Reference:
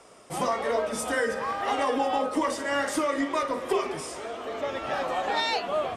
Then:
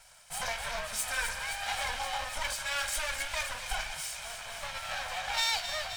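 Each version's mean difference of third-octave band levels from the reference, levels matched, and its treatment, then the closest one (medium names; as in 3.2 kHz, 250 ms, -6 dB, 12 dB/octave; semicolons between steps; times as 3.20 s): 12.0 dB: comb filter that takes the minimum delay 1.3 ms; amplifier tone stack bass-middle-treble 10-0-10; on a send: feedback echo behind a high-pass 262 ms, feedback 73%, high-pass 2.3 kHz, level -8 dB; on the sum: trim +3 dB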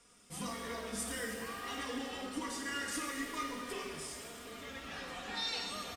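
8.0 dB: amplifier tone stack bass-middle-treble 6-0-2; comb 4.2 ms, depth 56%; pitch-shifted reverb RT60 1.9 s, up +7 st, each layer -8 dB, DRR 2 dB; trim +7 dB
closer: second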